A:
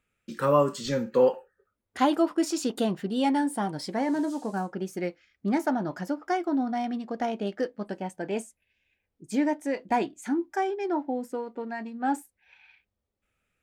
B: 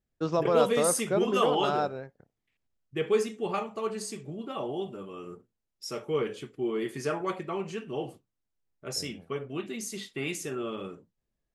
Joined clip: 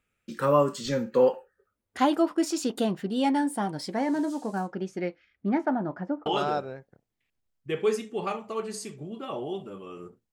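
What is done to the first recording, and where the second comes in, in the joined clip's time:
A
0:04.67–0:06.26: low-pass filter 7,000 Hz → 1,100 Hz
0:06.26: continue with B from 0:01.53

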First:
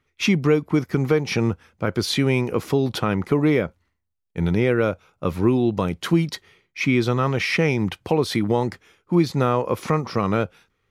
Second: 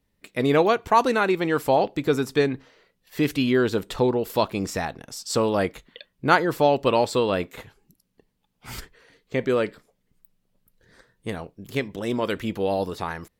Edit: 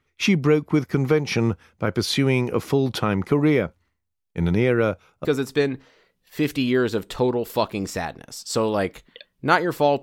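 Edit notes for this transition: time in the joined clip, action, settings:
first
0:05.25: continue with second from 0:02.05

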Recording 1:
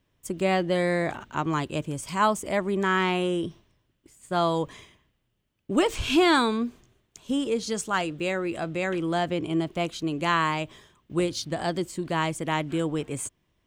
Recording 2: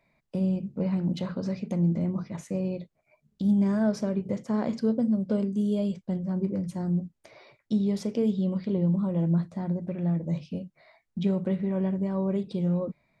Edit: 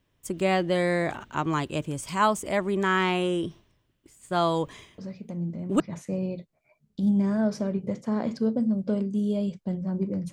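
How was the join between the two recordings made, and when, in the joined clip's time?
recording 1
0:04.98: mix in recording 2 from 0:01.40 0.82 s −7 dB
0:05.80: continue with recording 2 from 0:02.22

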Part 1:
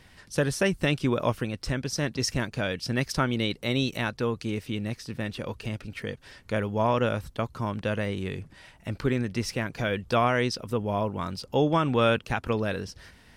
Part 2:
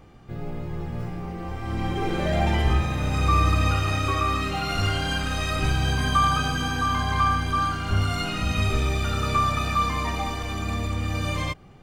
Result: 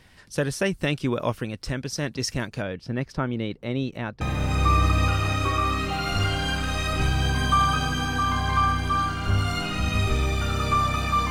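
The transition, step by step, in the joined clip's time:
part 1
0:02.62–0:04.21: low-pass filter 1,200 Hz 6 dB per octave
0:04.21: continue with part 2 from 0:02.84

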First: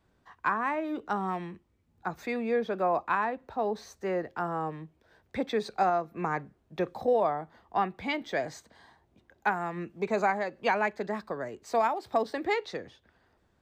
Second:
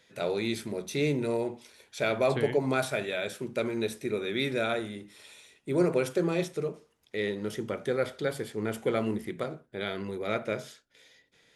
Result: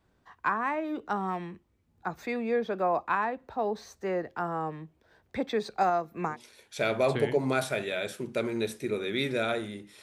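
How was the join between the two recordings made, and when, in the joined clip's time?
first
0:05.81–0:06.37: high-shelf EQ 5,600 Hz +8 dB
0:06.32: continue with second from 0:01.53, crossfade 0.10 s

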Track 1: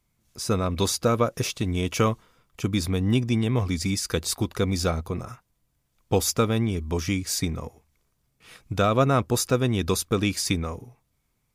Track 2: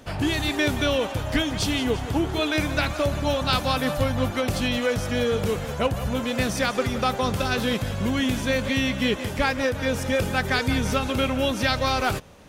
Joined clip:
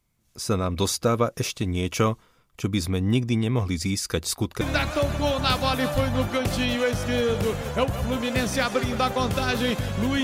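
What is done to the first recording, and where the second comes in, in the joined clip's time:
track 1
0:04.61: continue with track 2 from 0:02.64

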